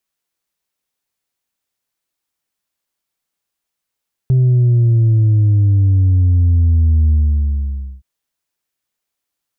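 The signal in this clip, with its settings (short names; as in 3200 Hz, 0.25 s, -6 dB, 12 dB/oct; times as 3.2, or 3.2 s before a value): sub drop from 130 Hz, over 3.72 s, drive 2 dB, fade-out 0.91 s, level -9 dB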